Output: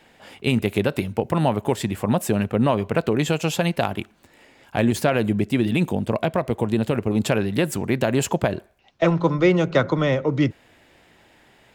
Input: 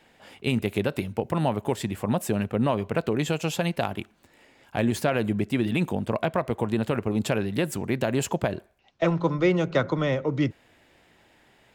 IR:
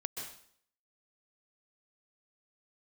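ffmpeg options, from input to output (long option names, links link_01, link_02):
-filter_complex "[0:a]asettb=1/sr,asplit=3[link_01][link_02][link_03];[link_01]atrim=end=4.934[link_04];[link_02]atrim=start=4.93:end=7.11,asetpts=PTS-STARTPTS,afade=type=in:duration=0.004:curve=qsin,afade=type=out:start_time=2.176:duration=0.004:curve=qsin,adynamicequalizer=threshold=0.00891:dfrequency=1300:dqfactor=0.87:tfrequency=1300:tqfactor=0.87:attack=5:release=100:ratio=0.375:range=2.5:mode=cutabove:tftype=bell[link_05];[link_03]atrim=start=7.106[link_06];[link_04][link_05]acrossfade=duration=0.004:curve1=hsin:curve2=qsin[link_07];[link_07][link_06]acrossfade=duration=0.004:curve1=qsin:curve2=hsin,volume=4.5dB"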